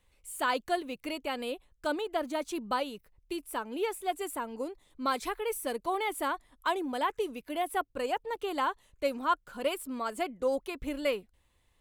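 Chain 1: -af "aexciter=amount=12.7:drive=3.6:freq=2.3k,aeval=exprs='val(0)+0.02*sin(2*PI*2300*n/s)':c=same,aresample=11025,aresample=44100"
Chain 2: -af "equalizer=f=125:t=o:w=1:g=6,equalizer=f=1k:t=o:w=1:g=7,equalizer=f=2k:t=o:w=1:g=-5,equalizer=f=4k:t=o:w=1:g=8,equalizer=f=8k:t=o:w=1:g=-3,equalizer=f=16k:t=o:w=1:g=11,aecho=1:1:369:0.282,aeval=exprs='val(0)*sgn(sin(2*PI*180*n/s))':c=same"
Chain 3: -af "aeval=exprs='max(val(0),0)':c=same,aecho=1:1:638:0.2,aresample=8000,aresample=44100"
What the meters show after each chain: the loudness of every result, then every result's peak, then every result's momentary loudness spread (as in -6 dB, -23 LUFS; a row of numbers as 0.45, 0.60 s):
-24.5, -29.5, -39.0 LUFS; -5.5, -10.5, -16.0 dBFS; 7, 8, 7 LU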